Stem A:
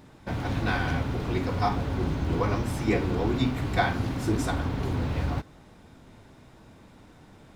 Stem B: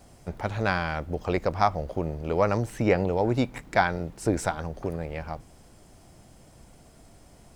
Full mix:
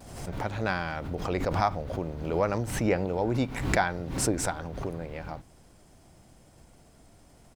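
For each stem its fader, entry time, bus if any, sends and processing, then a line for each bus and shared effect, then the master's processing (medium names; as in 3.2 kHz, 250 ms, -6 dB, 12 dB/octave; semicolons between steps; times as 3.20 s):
-17.5 dB, 0.00 s, no send, none
-4.0 dB, 4.6 ms, polarity flipped, no send, none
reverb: none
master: swell ahead of each attack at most 57 dB/s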